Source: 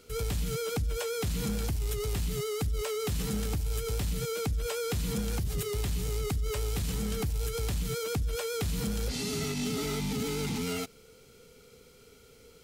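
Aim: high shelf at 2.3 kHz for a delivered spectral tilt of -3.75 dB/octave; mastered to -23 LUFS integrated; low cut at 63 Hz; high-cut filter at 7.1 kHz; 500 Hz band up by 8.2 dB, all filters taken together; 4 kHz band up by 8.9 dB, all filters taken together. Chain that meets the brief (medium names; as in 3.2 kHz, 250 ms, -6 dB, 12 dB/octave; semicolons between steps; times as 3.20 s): high-pass 63 Hz; low-pass 7.1 kHz; peaking EQ 500 Hz +9 dB; treble shelf 2.3 kHz +6.5 dB; peaking EQ 4 kHz +5.5 dB; trim +5 dB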